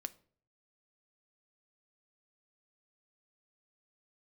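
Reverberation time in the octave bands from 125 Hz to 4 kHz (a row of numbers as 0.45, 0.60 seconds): 0.80, 0.55, 0.55, 0.45, 0.40, 0.35 seconds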